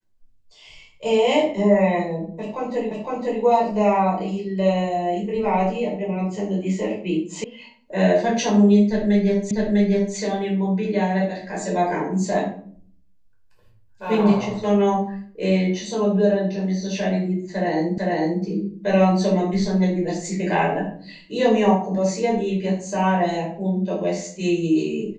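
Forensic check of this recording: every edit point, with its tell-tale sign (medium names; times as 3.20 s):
2.91 s: repeat of the last 0.51 s
7.44 s: sound stops dead
9.51 s: repeat of the last 0.65 s
17.98 s: repeat of the last 0.45 s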